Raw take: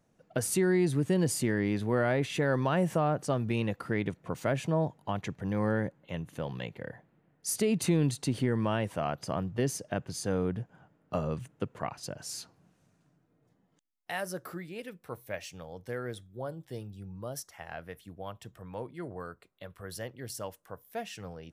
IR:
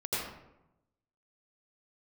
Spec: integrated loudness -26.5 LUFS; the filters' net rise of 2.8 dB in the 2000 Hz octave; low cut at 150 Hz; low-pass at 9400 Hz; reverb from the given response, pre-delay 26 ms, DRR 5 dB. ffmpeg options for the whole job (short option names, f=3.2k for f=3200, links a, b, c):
-filter_complex "[0:a]highpass=150,lowpass=9.4k,equalizer=f=2k:t=o:g=3.5,asplit=2[a][b];[1:a]atrim=start_sample=2205,adelay=26[c];[b][c]afir=irnorm=-1:irlink=0,volume=-11.5dB[d];[a][d]amix=inputs=2:normalize=0,volume=5dB"